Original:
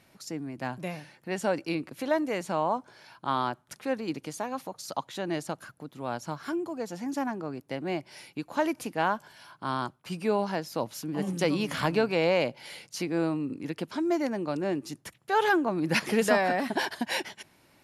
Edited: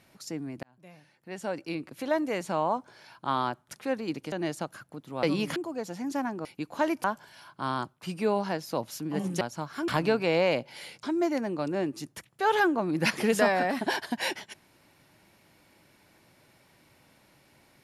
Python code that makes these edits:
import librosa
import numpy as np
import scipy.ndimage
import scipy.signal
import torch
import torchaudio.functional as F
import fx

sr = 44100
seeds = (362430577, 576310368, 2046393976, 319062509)

y = fx.edit(x, sr, fx.fade_in_span(start_s=0.63, length_s=1.64),
    fx.cut(start_s=4.32, length_s=0.88),
    fx.swap(start_s=6.11, length_s=0.47, other_s=11.44, other_length_s=0.33),
    fx.cut(start_s=7.47, length_s=0.76),
    fx.cut(start_s=8.82, length_s=0.25),
    fx.cut(start_s=12.92, length_s=1.0), tone=tone)